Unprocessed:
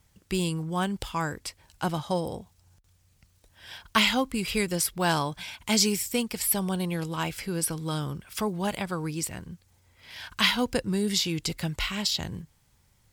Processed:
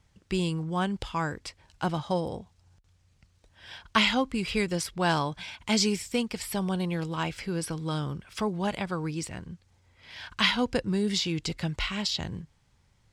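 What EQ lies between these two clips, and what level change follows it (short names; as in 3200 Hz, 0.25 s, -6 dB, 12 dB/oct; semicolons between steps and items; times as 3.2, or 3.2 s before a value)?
air absorption 93 m; high shelf 8900 Hz +6 dB; 0.0 dB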